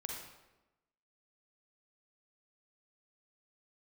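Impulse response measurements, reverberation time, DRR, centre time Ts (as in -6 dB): 1.0 s, -0.5 dB, 57 ms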